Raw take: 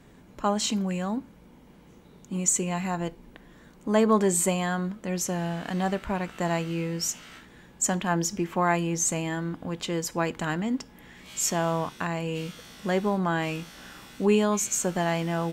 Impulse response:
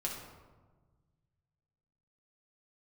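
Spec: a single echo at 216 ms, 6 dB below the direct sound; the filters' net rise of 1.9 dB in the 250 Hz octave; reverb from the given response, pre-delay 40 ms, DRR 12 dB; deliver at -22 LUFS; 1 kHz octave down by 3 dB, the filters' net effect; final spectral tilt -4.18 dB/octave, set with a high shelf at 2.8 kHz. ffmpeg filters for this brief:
-filter_complex "[0:a]equalizer=f=250:t=o:g=3,equalizer=f=1000:t=o:g=-4.5,highshelf=f=2800:g=3,aecho=1:1:216:0.501,asplit=2[s0][s1];[1:a]atrim=start_sample=2205,adelay=40[s2];[s1][s2]afir=irnorm=-1:irlink=0,volume=0.2[s3];[s0][s3]amix=inputs=2:normalize=0,volume=1.41"

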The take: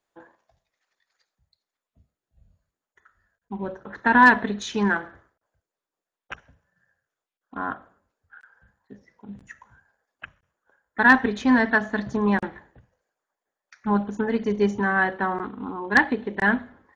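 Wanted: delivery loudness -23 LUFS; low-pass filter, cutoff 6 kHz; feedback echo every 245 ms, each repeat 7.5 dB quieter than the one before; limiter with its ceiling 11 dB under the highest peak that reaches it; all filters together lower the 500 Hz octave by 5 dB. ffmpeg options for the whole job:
-af "lowpass=6000,equalizer=f=500:t=o:g=-6.5,alimiter=limit=0.158:level=0:latency=1,aecho=1:1:245|490|735|980|1225:0.422|0.177|0.0744|0.0312|0.0131,volume=1.68"

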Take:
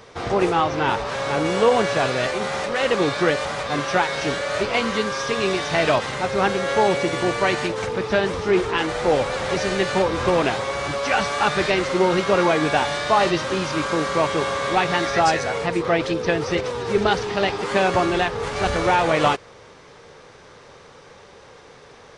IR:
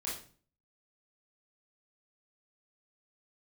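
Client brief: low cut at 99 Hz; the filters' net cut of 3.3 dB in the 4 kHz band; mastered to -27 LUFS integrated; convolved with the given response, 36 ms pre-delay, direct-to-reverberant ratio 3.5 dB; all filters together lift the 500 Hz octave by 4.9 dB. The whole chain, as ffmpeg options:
-filter_complex "[0:a]highpass=99,equalizer=f=500:t=o:g=6,equalizer=f=4000:t=o:g=-4.5,asplit=2[s0][s1];[1:a]atrim=start_sample=2205,adelay=36[s2];[s1][s2]afir=irnorm=-1:irlink=0,volume=0.562[s3];[s0][s3]amix=inputs=2:normalize=0,volume=0.299"

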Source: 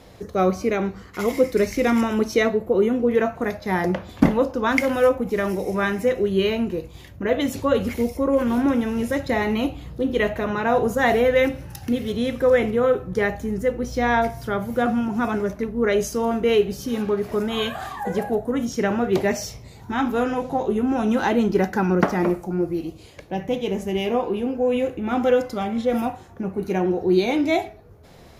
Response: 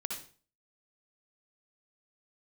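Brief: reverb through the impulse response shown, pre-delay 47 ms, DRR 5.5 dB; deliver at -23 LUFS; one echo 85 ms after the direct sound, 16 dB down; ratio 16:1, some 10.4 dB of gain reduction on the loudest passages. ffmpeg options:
-filter_complex "[0:a]acompressor=threshold=0.112:ratio=16,aecho=1:1:85:0.158,asplit=2[s0][s1];[1:a]atrim=start_sample=2205,adelay=47[s2];[s1][s2]afir=irnorm=-1:irlink=0,volume=0.473[s3];[s0][s3]amix=inputs=2:normalize=0,volume=1.19"

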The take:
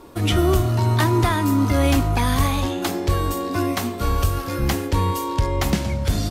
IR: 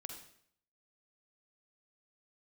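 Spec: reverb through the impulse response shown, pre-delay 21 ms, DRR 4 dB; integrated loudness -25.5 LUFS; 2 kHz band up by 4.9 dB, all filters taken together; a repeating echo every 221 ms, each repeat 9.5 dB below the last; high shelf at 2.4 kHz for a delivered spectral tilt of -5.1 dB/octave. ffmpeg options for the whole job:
-filter_complex "[0:a]equalizer=f=2000:t=o:g=4.5,highshelf=f=2400:g=3,aecho=1:1:221|442|663|884:0.335|0.111|0.0365|0.012,asplit=2[s0][s1];[1:a]atrim=start_sample=2205,adelay=21[s2];[s1][s2]afir=irnorm=-1:irlink=0,volume=0.944[s3];[s0][s3]amix=inputs=2:normalize=0,volume=0.447"

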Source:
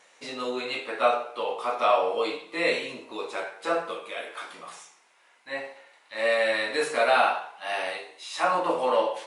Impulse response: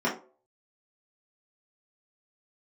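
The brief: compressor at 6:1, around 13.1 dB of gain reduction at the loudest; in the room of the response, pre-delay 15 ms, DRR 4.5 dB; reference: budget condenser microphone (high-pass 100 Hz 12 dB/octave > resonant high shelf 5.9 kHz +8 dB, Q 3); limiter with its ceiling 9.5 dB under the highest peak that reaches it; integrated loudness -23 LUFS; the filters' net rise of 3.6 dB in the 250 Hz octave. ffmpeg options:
-filter_complex "[0:a]equalizer=f=250:t=o:g=5,acompressor=threshold=0.0282:ratio=6,alimiter=level_in=1.78:limit=0.0631:level=0:latency=1,volume=0.562,asplit=2[s0][s1];[1:a]atrim=start_sample=2205,adelay=15[s2];[s1][s2]afir=irnorm=-1:irlink=0,volume=0.15[s3];[s0][s3]amix=inputs=2:normalize=0,highpass=100,highshelf=f=5900:t=q:w=3:g=8,volume=4.73"

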